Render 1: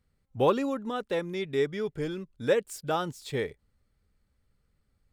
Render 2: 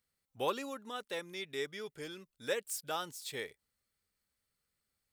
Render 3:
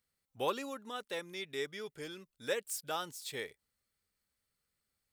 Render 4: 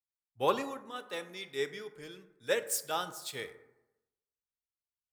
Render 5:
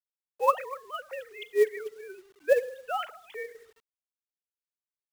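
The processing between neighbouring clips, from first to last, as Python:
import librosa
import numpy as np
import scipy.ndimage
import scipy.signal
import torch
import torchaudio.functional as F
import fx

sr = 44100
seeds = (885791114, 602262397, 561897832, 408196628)

y1 = fx.tilt_eq(x, sr, slope=3.5)
y1 = fx.notch(y1, sr, hz=7100.0, q=29.0)
y1 = y1 * librosa.db_to_amplitude(-8.0)
y2 = y1
y3 = fx.rev_plate(y2, sr, seeds[0], rt60_s=1.6, hf_ratio=0.3, predelay_ms=0, drr_db=9.0)
y3 = fx.band_widen(y3, sr, depth_pct=70)
y3 = y3 * librosa.db_to_amplitude(1.0)
y4 = fx.sine_speech(y3, sr)
y4 = fx.quant_companded(y4, sr, bits=6)
y4 = y4 * librosa.db_to_amplitude(6.0)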